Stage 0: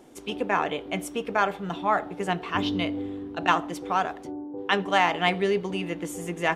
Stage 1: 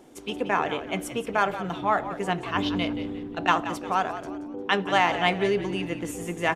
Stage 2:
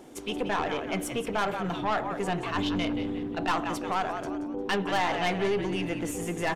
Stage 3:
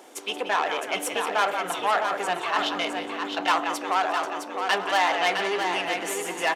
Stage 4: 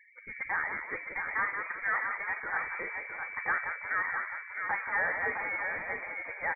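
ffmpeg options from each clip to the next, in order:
-filter_complex "[0:a]asplit=5[a][b][c][d][e];[b]adelay=177,afreqshift=-61,volume=-12dB[f];[c]adelay=354,afreqshift=-122,volume=-20.6dB[g];[d]adelay=531,afreqshift=-183,volume=-29.3dB[h];[e]adelay=708,afreqshift=-244,volume=-37.9dB[i];[a][f][g][h][i]amix=inputs=5:normalize=0"
-filter_complex "[0:a]aeval=exprs='(tanh(11.2*val(0)+0.35)-tanh(0.35))/11.2':c=same,asplit=2[a][b];[b]alimiter=level_in=6dB:limit=-24dB:level=0:latency=1,volume=-6dB,volume=1dB[c];[a][c]amix=inputs=2:normalize=0,volume=-2.5dB"
-af "highpass=590,aecho=1:1:661|1322|1983:0.501|0.0902|0.0162,volume=6dB"
-af "lowpass=f=2.2k:t=q:w=0.5098,lowpass=f=2.2k:t=q:w=0.6013,lowpass=f=2.2k:t=q:w=0.9,lowpass=f=2.2k:t=q:w=2.563,afreqshift=-2600,afftfilt=real='re*gte(hypot(re,im),0.0112)':imag='im*gte(hypot(re,im),0.0112)':win_size=1024:overlap=0.75,volume=-7.5dB"

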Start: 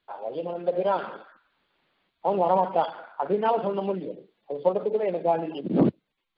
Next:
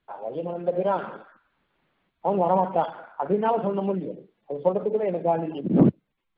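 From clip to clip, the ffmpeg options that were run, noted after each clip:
-af "bass=f=250:g=7,treble=f=4k:g=-15"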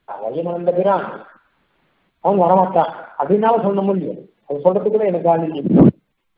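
-af "apsyclip=10dB,volume=-1.5dB"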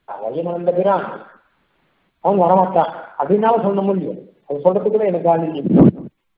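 -af "aecho=1:1:186:0.0668"

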